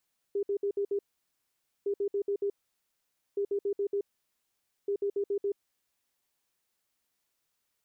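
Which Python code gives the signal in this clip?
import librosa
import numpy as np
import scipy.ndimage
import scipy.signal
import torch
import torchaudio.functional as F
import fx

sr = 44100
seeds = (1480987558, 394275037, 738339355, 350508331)

y = fx.beep_pattern(sr, wave='sine', hz=402.0, on_s=0.08, off_s=0.06, beeps=5, pause_s=0.87, groups=4, level_db=-26.5)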